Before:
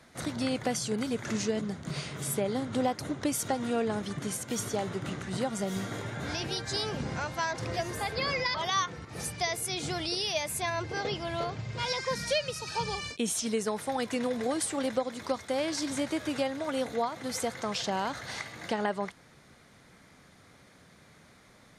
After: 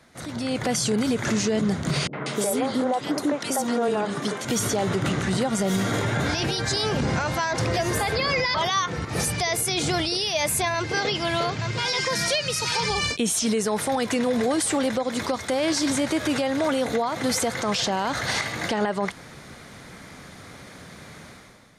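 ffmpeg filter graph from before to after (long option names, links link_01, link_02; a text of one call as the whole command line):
ffmpeg -i in.wav -filter_complex "[0:a]asettb=1/sr,asplit=3[link_01][link_02][link_03];[link_01]atrim=end=2.074[link_04];[link_02]atrim=start=2.07:end=4.45,asetpts=PTS-STARTPTS,afade=type=in:duration=0.004:curve=qsin,afade=type=out:start_time=2.376:duration=0.004:curve=qsin,highpass=280,acrossover=split=390|2000[link_05][link_06][link_07];[link_06]adelay=60[link_08];[link_07]adelay=190[link_09];[link_05][link_08][link_09]amix=inputs=3:normalize=0,atrim=end_sample=104958,adynamicequalizer=threshold=0.00398:dfrequency=1800:dqfactor=0.7:tfrequency=1800:tqfactor=0.7:attack=5:release=100:ratio=0.375:range=3:mode=cutabove:tftype=highshelf[link_10];[link_03]atrim=start=4.446[link_11];[link_04][link_10]acrossfade=duration=0.004:curve1=hsin:curve2=qsin[link_12];[link_12][link_11]acrossfade=duration=0.004:curve1=qsin:curve2=hsin,asettb=1/sr,asplit=3[link_13][link_14][link_15];[link_13]atrim=end=10.744[link_16];[link_14]atrim=start=10.74:end=12.9,asetpts=PTS-STARTPTS,afade=type=in:duration=0.004:curve=qsin,afade=type=out:start_time=2.156:duration=0.004:curve=qsin,highpass=frequency=210:poles=1,equalizer=frequency=630:width=0.65:gain=-5.5,aecho=1:1:873:0.335,atrim=end_sample=95256[link_17];[link_15]atrim=start=12.896[link_18];[link_16][link_17]acrossfade=duration=0.004:curve1=hsin:curve2=qsin[link_19];[link_19][link_18]acrossfade=duration=0.004:curve1=qsin:curve2=hsin,acompressor=threshold=-31dB:ratio=6,alimiter=level_in=5.5dB:limit=-24dB:level=0:latency=1:release=18,volume=-5.5dB,dynaudnorm=framelen=100:gausssize=9:maxgain=12.5dB,volume=1.5dB" out.wav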